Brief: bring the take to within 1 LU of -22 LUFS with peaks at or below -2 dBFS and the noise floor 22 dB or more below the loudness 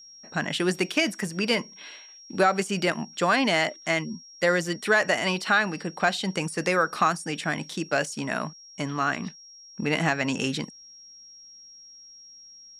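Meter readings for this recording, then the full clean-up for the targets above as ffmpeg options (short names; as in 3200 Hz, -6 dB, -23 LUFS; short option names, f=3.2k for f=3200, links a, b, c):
steady tone 5600 Hz; tone level -46 dBFS; loudness -26.0 LUFS; peak -9.5 dBFS; loudness target -22.0 LUFS
-> -af "bandreject=f=5.6k:w=30"
-af "volume=4dB"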